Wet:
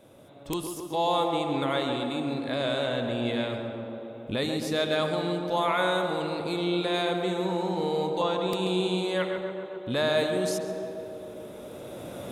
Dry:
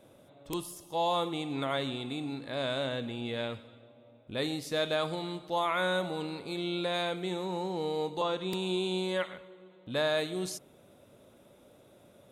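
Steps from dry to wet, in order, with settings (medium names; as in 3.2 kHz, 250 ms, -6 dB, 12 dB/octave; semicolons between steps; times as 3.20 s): recorder AGC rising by 8.8 dB/s; tape echo 136 ms, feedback 89%, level -4 dB, low-pass 1.5 kHz; algorithmic reverb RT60 3.6 s, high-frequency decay 0.7×, pre-delay 110 ms, DRR 15 dB; trim +3 dB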